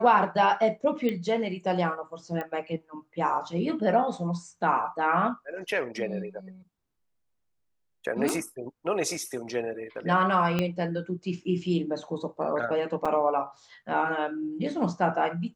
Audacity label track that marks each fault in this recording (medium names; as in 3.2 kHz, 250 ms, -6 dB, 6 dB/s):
1.090000	1.090000	pop -18 dBFS
2.410000	2.410000	pop -21 dBFS
8.290000	8.290000	pop -12 dBFS
10.590000	10.590000	pop -13 dBFS
13.050000	13.060000	dropout 5.3 ms